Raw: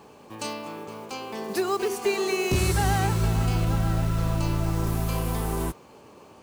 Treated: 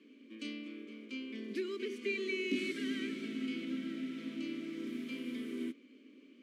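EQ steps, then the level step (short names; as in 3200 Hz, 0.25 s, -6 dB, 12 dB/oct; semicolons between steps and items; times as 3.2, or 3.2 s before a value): vowel filter i; elliptic high-pass 210 Hz, stop band 50 dB; Butterworth band-stop 790 Hz, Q 2.5; +4.5 dB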